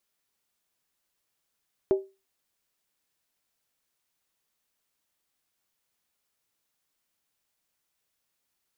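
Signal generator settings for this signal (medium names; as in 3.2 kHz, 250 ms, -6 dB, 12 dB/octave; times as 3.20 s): skin hit, lowest mode 387 Hz, decay 0.27 s, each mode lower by 12 dB, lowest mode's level -15.5 dB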